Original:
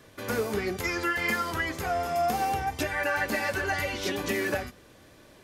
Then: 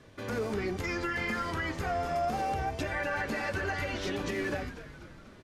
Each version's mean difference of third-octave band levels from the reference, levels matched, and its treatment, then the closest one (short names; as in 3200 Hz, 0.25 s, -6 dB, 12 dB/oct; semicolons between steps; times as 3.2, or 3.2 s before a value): 4.0 dB: low shelf 270 Hz +5 dB; limiter -20.5 dBFS, peak gain reduction 7 dB; air absorption 53 m; frequency-shifting echo 0.245 s, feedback 57%, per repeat -120 Hz, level -13 dB; gain -3 dB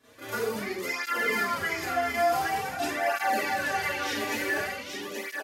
7.0 dB: low shelf 200 Hz -9.5 dB; on a send: echo 0.828 s -4.5 dB; on the sum: Schroeder reverb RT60 0.5 s, combs from 27 ms, DRR -10 dB; tape flanging out of phase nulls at 0.47 Hz, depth 5.8 ms; gain -7.5 dB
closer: first